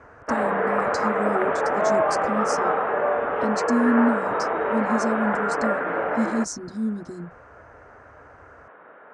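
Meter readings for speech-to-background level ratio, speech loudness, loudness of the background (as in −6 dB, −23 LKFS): −4.0 dB, −28.0 LKFS, −24.0 LKFS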